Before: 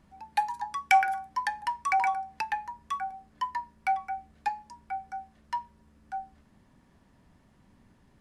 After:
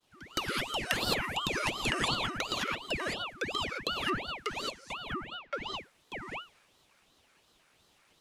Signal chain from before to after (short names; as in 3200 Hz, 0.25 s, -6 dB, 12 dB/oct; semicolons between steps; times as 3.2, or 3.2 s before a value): expander -59 dBFS; HPF 1300 Hz 12 dB/oct; compressor 6:1, threshold -33 dBFS, peak gain reduction 12.5 dB; 5.08–5.54 LPF 2600 Hz 12 dB/oct; non-linear reverb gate 0.24 s rising, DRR -3.5 dB; ring modulator with a swept carrier 1300 Hz, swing 70%, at 2.8 Hz; gain +6.5 dB